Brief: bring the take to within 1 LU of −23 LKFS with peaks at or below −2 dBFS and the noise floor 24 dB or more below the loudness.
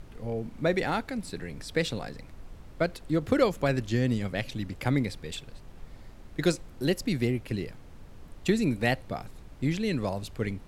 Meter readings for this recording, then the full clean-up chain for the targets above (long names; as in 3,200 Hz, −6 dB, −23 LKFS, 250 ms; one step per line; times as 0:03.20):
background noise floor −49 dBFS; target noise floor −54 dBFS; integrated loudness −30.0 LKFS; sample peak −10.5 dBFS; target loudness −23.0 LKFS
→ noise reduction from a noise print 6 dB
level +7 dB